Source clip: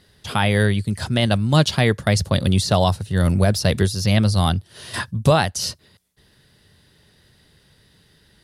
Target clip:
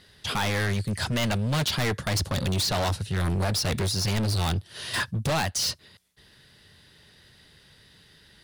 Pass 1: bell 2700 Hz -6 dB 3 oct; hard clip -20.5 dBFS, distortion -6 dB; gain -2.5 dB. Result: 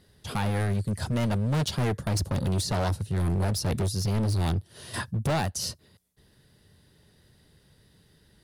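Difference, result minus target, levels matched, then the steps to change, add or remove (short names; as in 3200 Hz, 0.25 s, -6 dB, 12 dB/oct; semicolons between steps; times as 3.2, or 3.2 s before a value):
2000 Hz band -5.5 dB
change: bell 2700 Hz +6 dB 3 oct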